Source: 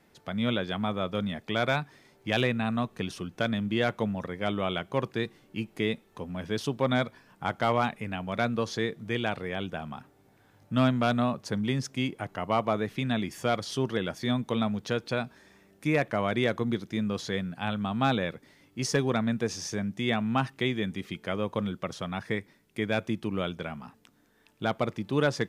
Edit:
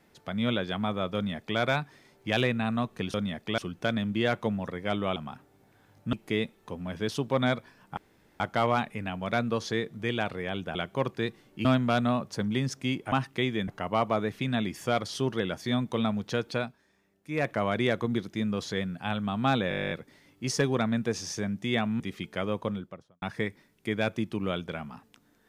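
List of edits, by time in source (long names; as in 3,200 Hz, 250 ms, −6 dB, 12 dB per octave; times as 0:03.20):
0:01.15–0:01.59: duplicate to 0:03.14
0:04.72–0:05.62: swap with 0:09.81–0:10.78
0:07.46: splice in room tone 0.43 s
0:15.15–0:16.04: duck −11.5 dB, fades 0.18 s
0:18.26: stutter 0.02 s, 12 plays
0:20.35–0:20.91: move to 0:12.25
0:21.42–0:22.13: fade out and dull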